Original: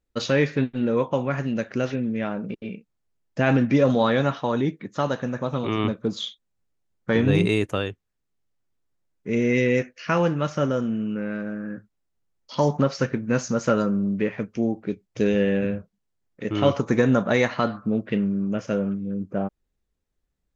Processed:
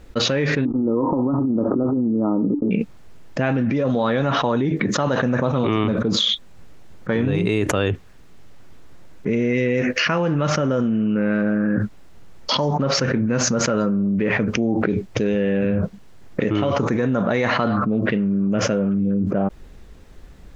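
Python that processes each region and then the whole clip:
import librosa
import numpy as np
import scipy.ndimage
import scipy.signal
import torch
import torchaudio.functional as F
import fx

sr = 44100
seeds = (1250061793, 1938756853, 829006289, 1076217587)

y = fx.chain(x, sr, fx.peak_eq(hz=290.0, db=13.5, octaves=0.32),
    fx.over_compress(threshold_db=-23.0, ratio=-0.5),
    fx.cheby_ripple(hz=1300.0, ripple_db=6), at=(0.65, 2.71))
y = fx.lowpass(y, sr, hz=3100.0, slope=6)
y = fx.env_flatten(y, sr, amount_pct=100)
y = y * 10.0 ** (-5.0 / 20.0)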